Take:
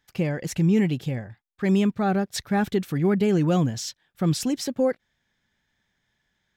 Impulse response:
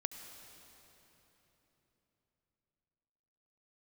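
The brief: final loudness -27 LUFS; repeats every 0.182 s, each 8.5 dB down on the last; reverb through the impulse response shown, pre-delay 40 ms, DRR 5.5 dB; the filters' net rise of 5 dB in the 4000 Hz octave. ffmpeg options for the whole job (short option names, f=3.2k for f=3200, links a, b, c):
-filter_complex "[0:a]equalizer=f=4k:t=o:g=6.5,aecho=1:1:182|364|546|728:0.376|0.143|0.0543|0.0206,asplit=2[a][b];[1:a]atrim=start_sample=2205,adelay=40[c];[b][c]afir=irnorm=-1:irlink=0,volume=-5dB[d];[a][d]amix=inputs=2:normalize=0,volume=-4.5dB"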